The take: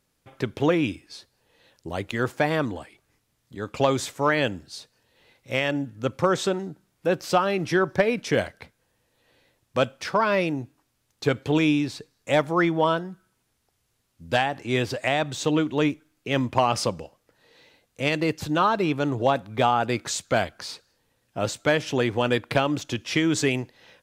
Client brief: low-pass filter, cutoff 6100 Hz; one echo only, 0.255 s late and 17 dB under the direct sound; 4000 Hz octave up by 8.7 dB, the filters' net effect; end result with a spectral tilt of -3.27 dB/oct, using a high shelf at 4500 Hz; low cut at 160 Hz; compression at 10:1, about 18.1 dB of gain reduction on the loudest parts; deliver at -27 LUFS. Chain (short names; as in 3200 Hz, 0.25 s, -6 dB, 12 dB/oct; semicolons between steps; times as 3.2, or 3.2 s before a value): HPF 160 Hz; LPF 6100 Hz; bell 4000 Hz +8.5 dB; high shelf 4500 Hz +7 dB; compressor 10:1, threshold -34 dBFS; echo 0.255 s -17 dB; gain +11.5 dB